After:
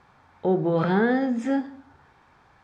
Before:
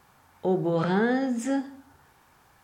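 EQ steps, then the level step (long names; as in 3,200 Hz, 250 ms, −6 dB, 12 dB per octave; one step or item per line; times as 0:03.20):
low-pass filter 3,700 Hz 12 dB per octave
notch filter 2,900 Hz, Q 14
+2.5 dB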